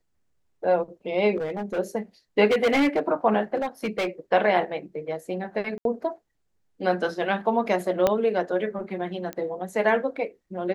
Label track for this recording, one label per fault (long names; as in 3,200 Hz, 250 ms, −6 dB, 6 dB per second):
1.360000	1.790000	clipping −25 dBFS
2.470000	3.000000	clipping −17 dBFS
3.550000	4.070000	clipping −22 dBFS
5.780000	5.850000	drop-out 72 ms
8.070000	8.070000	click −8 dBFS
9.330000	9.330000	click −18 dBFS